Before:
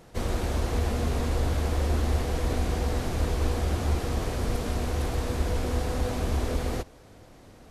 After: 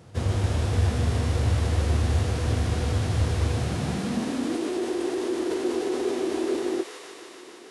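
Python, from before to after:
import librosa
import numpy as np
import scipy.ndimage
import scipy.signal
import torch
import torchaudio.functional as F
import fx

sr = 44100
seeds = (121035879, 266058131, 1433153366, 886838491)

y = fx.filter_sweep_highpass(x, sr, from_hz=98.0, to_hz=380.0, start_s=3.47, end_s=4.69, q=4.9)
y = fx.echo_wet_highpass(y, sr, ms=151, feedback_pct=82, hz=1500.0, wet_db=-5.0)
y = fx.formant_shift(y, sr, semitones=-3)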